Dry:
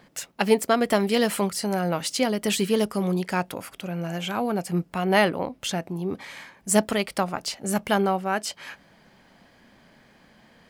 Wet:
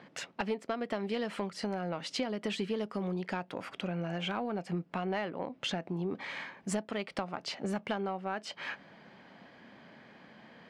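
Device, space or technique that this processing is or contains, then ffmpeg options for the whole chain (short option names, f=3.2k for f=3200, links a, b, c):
AM radio: -af "highpass=140,lowpass=3.5k,acompressor=threshold=-32dB:ratio=8,asoftclip=type=tanh:threshold=-21dB,volume=1.5dB"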